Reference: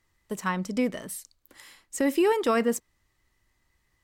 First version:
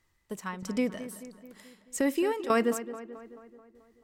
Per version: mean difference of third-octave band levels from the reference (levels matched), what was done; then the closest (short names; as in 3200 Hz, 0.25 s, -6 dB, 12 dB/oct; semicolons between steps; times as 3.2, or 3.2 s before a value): 4.5 dB: tremolo saw down 1.6 Hz, depth 80%; darkening echo 0.217 s, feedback 58%, low-pass 2900 Hz, level -13 dB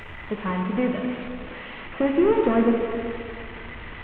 14.0 dB: delta modulation 16 kbps, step -36 dBFS; plate-style reverb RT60 2.4 s, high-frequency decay 0.95×, DRR 2 dB; gain +3 dB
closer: first